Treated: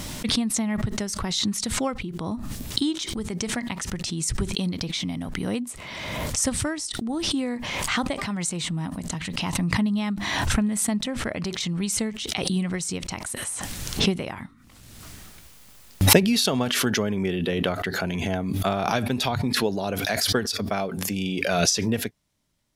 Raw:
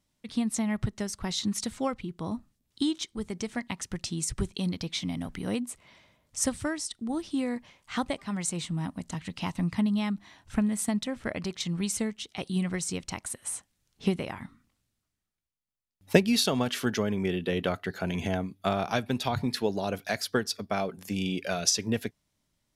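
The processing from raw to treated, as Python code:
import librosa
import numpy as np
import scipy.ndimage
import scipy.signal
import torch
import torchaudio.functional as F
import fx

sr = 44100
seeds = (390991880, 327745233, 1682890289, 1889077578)

y = fx.pre_swell(x, sr, db_per_s=27.0)
y = F.gain(torch.from_numpy(y), 2.5).numpy()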